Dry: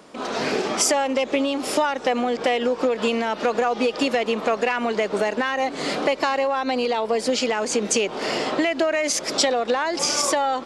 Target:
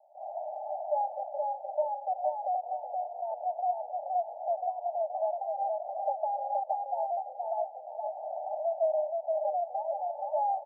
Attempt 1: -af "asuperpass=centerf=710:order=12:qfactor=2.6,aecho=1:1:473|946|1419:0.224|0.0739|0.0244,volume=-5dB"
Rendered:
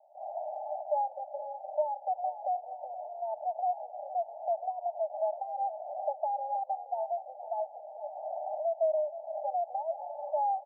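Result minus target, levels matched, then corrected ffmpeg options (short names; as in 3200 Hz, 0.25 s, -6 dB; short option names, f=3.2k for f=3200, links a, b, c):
echo-to-direct -10 dB
-af "asuperpass=centerf=710:order=12:qfactor=2.6,aecho=1:1:473|946|1419|1892:0.708|0.234|0.0771|0.0254,volume=-5dB"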